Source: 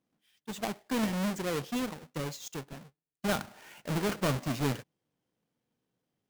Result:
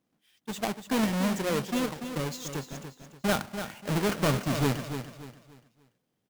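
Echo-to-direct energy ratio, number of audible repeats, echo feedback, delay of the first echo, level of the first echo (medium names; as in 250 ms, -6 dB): -8.5 dB, 3, 33%, 290 ms, -9.0 dB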